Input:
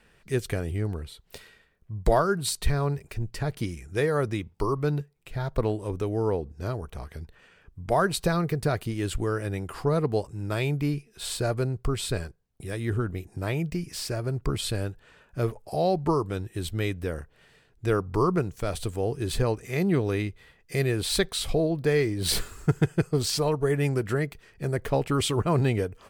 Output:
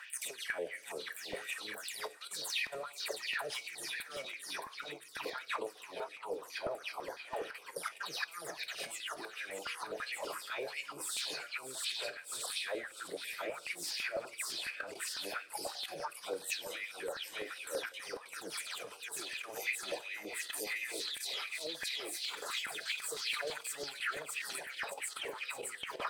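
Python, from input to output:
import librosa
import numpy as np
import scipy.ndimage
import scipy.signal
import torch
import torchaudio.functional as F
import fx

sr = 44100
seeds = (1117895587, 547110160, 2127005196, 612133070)

p1 = fx.spec_delay(x, sr, highs='early', ms=182)
p2 = fx.low_shelf(p1, sr, hz=450.0, db=-4.0)
p3 = fx.over_compress(p2, sr, threshold_db=-34.0, ratio=-0.5)
p4 = p3 + fx.echo_split(p3, sr, split_hz=310.0, low_ms=428, high_ms=615, feedback_pct=52, wet_db=-7.0, dry=0)
p5 = fx.tube_stage(p4, sr, drive_db=22.0, bias=0.3)
p6 = fx.level_steps(p5, sr, step_db=15)
p7 = fx.filter_lfo_highpass(p6, sr, shape='sine', hz=2.8, low_hz=490.0, high_hz=2600.0, q=3.6)
p8 = fx.rev_double_slope(p7, sr, seeds[0], early_s=0.33, late_s=1.6, knee_db=-17, drr_db=12.0)
p9 = fx.filter_held_notch(p8, sr, hz=12.0, low_hz=270.0, high_hz=2400.0)
y = F.gain(torch.from_numpy(p9), 5.5).numpy()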